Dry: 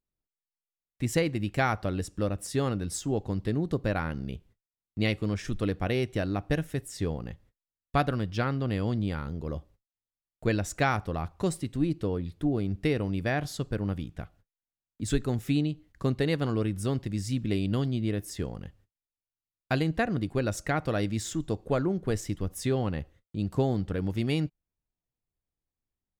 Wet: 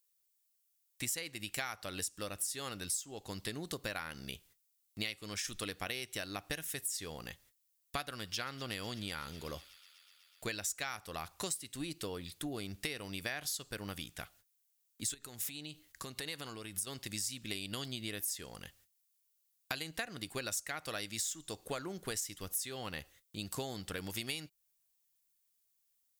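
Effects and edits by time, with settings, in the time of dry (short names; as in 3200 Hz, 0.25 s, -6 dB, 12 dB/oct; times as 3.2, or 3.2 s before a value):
8.03–10.47 thin delay 0.124 s, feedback 84%, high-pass 2600 Hz, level -19 dB
15.14–16.87 compressor 16:1, threshold -32 dBFS
whole clip: pre-emphasis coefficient 0.97; compressor 6:1, threshold -52 dBFS; gain +16 dB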